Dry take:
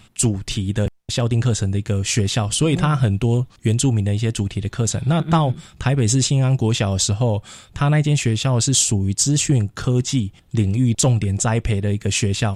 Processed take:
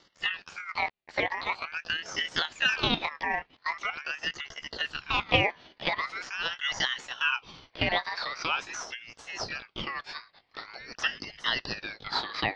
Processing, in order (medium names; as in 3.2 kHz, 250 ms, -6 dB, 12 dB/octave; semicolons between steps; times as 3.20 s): pitch bend over the whole clip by +10 st ending unshifted; mistuned SSB -130 Hz 590–3300 Hz; ring modulator with a swept carrier 1.9 kHz, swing 30%, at 0.44 Hz; trim +2 dB